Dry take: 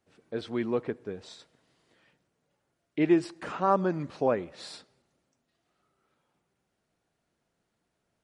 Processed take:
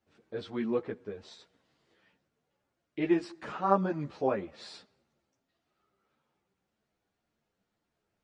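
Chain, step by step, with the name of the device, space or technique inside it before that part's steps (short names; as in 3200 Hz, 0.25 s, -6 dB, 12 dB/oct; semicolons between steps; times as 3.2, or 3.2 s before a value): string-machine ensemble chorus (ensemble effect; LPF 6500 Hz 12 dB/oct)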